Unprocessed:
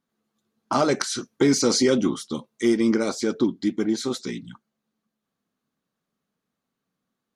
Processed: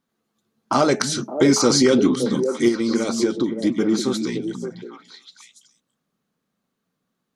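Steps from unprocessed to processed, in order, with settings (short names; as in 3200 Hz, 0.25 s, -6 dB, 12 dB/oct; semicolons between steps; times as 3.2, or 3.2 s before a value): de-hum 213.1 Hz, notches 4; 2.68–3.55 compressor, threshold -22 dBFS, peak gain reduction 7 dB; delay with a stepping band-pass 0.284 s, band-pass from 170 Hz, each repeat 1.4 oct, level -1.5 dB; gain +3.5 dB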